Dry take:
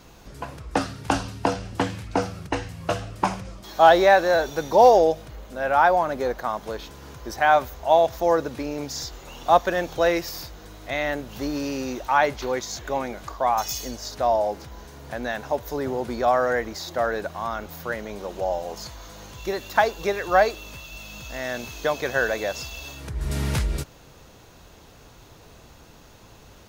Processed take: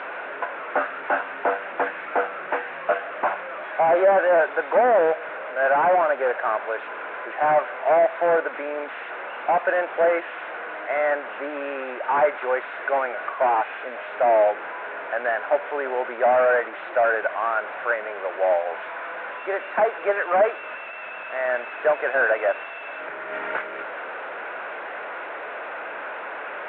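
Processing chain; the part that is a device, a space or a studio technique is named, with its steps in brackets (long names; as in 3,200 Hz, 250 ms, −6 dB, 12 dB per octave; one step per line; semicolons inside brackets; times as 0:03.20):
digital answering machine (band-pass filter 370–3,300 Hz; linear delta modulator 16 kbit/s, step −33 dBFS; loudspeaker in its box 490–3,400 Hz, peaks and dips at 610 Hz +5 dB, 1,500 Hz +8 dB, 3,100 Hz −8 dB)
level +5 dB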